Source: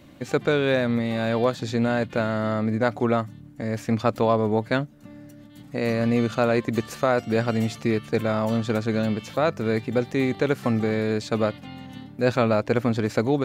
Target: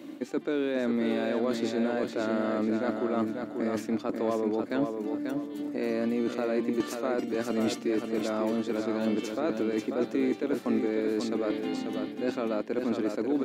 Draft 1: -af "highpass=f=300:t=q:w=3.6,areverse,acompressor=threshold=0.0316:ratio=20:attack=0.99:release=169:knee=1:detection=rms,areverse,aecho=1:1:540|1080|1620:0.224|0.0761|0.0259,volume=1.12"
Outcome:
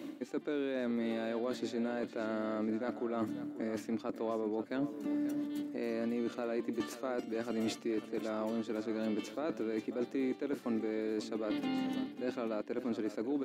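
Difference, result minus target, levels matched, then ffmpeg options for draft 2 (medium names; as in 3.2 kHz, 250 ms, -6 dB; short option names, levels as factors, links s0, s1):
compression: peak gain reduction +6.5 dB; echo-to-direct -7.5 dB
-af "highpass=f=300:t=q:w=3.6,areverse,acompressor=threshold=0.0708:ratio=20:attack=0.99:release=169:knee=1:detection=rms,areverse,aecho=1:1:540|1080|1620|2160:0.531|0.181|0.0614|0.0209,volume=1.12"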